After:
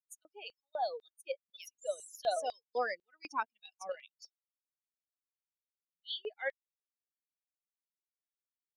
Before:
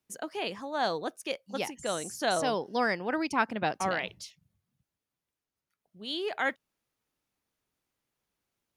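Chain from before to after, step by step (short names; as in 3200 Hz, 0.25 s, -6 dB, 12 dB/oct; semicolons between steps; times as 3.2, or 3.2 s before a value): per-bin expansion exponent 3; LFO high-pass square 2 Hz 550–3700 Hz; 3.4–4.23 level quantiser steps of 10 dB; gain -4.5 dB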